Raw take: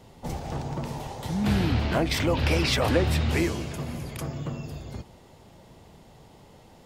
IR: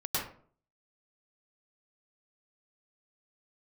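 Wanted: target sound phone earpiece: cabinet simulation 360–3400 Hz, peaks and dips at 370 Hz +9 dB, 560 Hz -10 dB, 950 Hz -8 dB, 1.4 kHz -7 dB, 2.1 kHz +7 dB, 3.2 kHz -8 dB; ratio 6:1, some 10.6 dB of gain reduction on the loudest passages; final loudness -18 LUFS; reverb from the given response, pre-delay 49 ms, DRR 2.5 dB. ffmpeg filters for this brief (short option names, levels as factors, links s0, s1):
-filter_complex "[0:a]acompressor=threshold=0.0316:ratio=6,asplit=2[s0][s1];[1:a]atrim=start_sample=2205,adelay=49[s2];[s1][s2]afir=irnorm=-1:irlink=0,volume=0.355[s3];[s0][s3]amix=inputs=2:normalize=0,highpass=360,equalizer=f=370:t=q:w=4:g=9,equalizer=f=560:t=q:w=4:g=-10,equalizer=f=950:t=q:w=4:g=-8,equalizer=f=1400:t=q:w=4:g=-7,equalizer=f=2100:t=q:w=4:g=7,equalizer=f=3200:t=q:w=4:g=-8,lowpass=f=3400:w=0.5412,lowpass=f=3400:w=1.3066,volume=8.91"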